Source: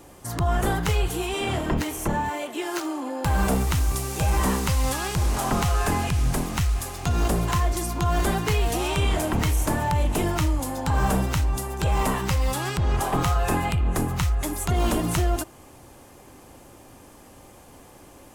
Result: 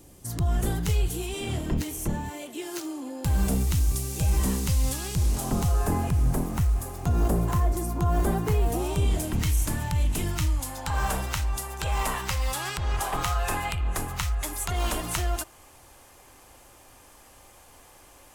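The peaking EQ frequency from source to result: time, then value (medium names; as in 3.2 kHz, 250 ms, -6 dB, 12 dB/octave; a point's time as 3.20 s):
peaking EQ -12.5 dB 2.8 oct
5.27 s 1.1 kHz
6.01 s 3.4 kHz
8.72 s 3.4 kHz
9.47 s 650 Hz
10.33 s 650 Hz
10.97 s 210 Hz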